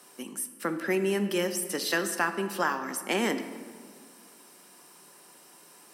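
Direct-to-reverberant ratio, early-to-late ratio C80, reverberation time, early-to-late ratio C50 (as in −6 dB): 8.5 dB, 11.5 dB, 1.9 s, 10.0 dB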